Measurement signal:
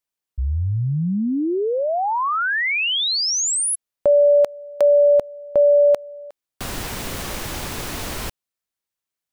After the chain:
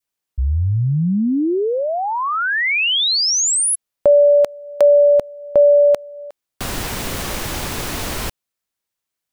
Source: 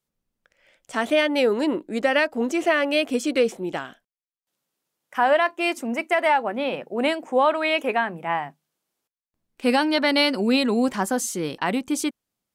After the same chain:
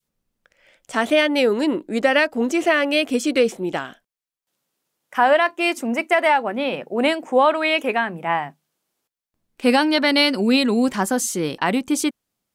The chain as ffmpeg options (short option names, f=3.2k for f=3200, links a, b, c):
-af "adynamicequalizer=threshold=0.0355:dfrequency=770:dqfactor=0.72:tfrequency=770:tqfactor=0.72:attack=5:release=100:ratio=0.375:range=2.5:mode=cutabove:tftype=bell,volume=4dB"